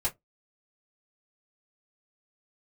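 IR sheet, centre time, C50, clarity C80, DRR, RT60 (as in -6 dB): 11 ms, 22.5 dB, 36.0 dB, -5.5 dB, no single decay rate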